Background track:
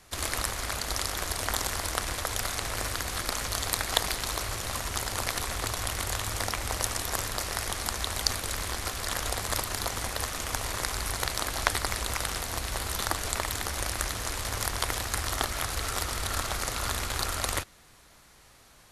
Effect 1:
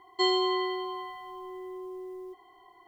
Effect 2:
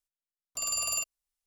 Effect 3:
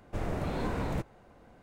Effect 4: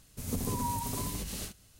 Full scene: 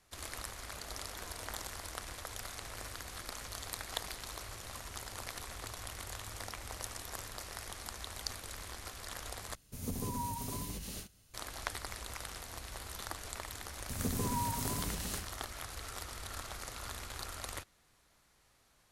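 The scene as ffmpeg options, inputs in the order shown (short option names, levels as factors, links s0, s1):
-filter_complex "[4:a]asplit=2[s0][s1];[0:a]volume=0.224[s2];[3:a]highpass=f=1300:p=1[s3];[s0]bandreject=f=7800:w=14[s4];[s2]asplit=2[s5][s6];[s5]atrim=end=9.554[s7];[s4]atrim=end=1.79,asetpts=PTS-STARTPTS,volume=0.562[s8];[s6]atrim=start=11.336[s9];[s3]atrim=end=1.62,asetpts=PTS-STARTPTS,volume=0.251,afade=t=in:d=0.004:c=hsin,afade=t=out:st=1.616:d=0.004:c=hsin,adelay=600[s10];[s1]atrim=end=1.79,asetpts=PTS-STARTPTS,volume=0.794,afade=t=in:d=0.004:c=hsin,afade=t=out:st=1.786:d=0.004:c=hsin,adelay=13720[s11];[s7][s8]acrossfade=d=0.004:c1=hsin:c2=hsin[s12];[s12][s9]acrossfade=d=0.004:c1=hsin:c2=hsin[s13];[s13][s10][s11]amix=inputs=3:normalize=0"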